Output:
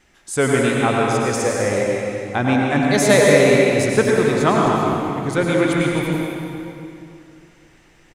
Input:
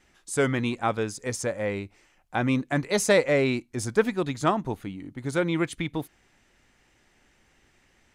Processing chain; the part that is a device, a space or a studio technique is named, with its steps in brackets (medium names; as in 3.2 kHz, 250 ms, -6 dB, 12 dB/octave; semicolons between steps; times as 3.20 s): cave (delay 258 ms -10 dB; reverberation RT60 2.7 s, pre-delay 87 ms, DRR -2.5 dB); trim +5 dB